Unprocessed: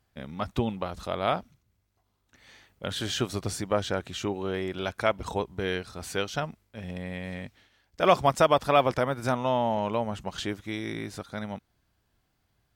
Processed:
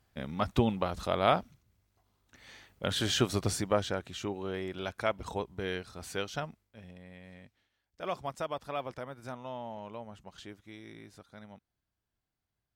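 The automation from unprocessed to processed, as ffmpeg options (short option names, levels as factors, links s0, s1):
-af "volume=1.12,afade=t=out:st=3.48:d=0.52:silence=0.473151,afade=t=out:st=6.38:d=0.58:silence=0.334965"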